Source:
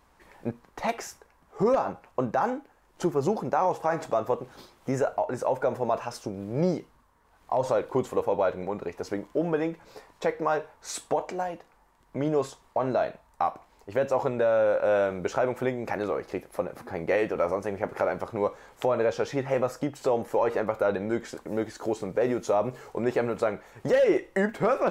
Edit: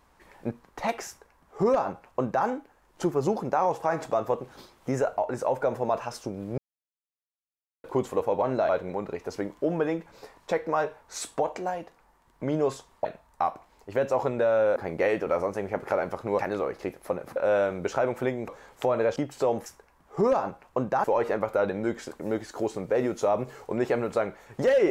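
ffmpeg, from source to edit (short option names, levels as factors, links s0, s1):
-filter_complex "[0:a]asplit=13[s0][s1][s2][s3][s4][s5][s6][s7][s8][s9][s10][s11][s12];[s0]atrim=end=6.58,asetpts=PTS-STARTPTS,afade=t=out:st=6.576:d=0.004:c=hsin[s13];[s1]atrim=start=6.58:end=7.84,asetpts=PTS-STARTPTS,volume=0[s14];[s2]atrim=start=7.84:end=8.422,asetpts=PTS-STARTPTS,afade=t=in:d=0.004:c=hsin[s15];[s3]atrim=start=12.778:end=13.052[s16];[s4]atrim=start=8.418:end=12.782[s17];[s5]atrim=start=13.048:end=14.762[s18];[s6]atrim=start=16.848:end=18.482[s19];[s7]atrim=start=15.878:end=16.852[s20];[s8]atrim=start=14.758:end=15.882[s21];[s9]atrim=start=18.478:end=19.162[s22];[s10]atrim=start=19.798:end=20.302[s23];[s11]atrim=start=1.078:end=2.462[s24];[s12]atrim=start=20.298[s25];[s13][s14][s15]concat=n=3:v=0:a=1[s26];[s26][s16]acrossfade=d=0.004:c1=hsin:c2=hsin[s27];[s27][s17]acrossfade=d=0.004:c1=hsin:c2=hsin[s28];[s28][s18]acrossfade=d=0.004:c1=hsin:c2=hsin[s29];[s29][s19]acrossfade=d=0.004:c1=hsin:c2=hsin[s30];[s30][s20]acrossfade=d=0.004:c1=hsin:c2=hsin[s31];[s31][s21]acrossfade=d=0.004:c1=hsin:c2=hsin[s32];[s32][s22]acrossfade=d=0.004:c1=hsin:c2=hsin[s33];[s33][s23]acrossfade=d=0.004:c1=hsin:c2=hsin[s34];[s34][s24]acrossfade=d=0.004:c1=hsin:c2=hsin[s35];[s35][s25]acrossfade=d=0.004:c1=hsin:c2=hsin"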